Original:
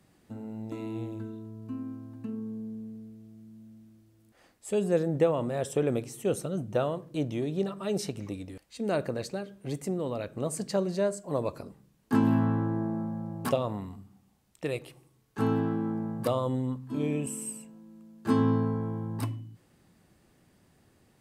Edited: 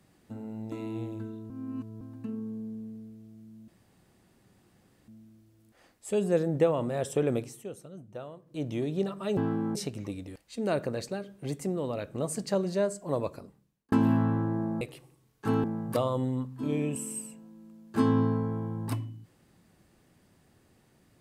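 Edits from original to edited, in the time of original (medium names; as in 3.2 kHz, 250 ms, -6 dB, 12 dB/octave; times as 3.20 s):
1.50–2.01 s: reverse
3.68 s: insert room tone 1.40 s
6.01–7.33 s: dip -13.5 dB, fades 0.28 s
11.40–12.14 s: fade out
13.03–14.74 s: delete
15.57–15.95 s: move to 7.97 s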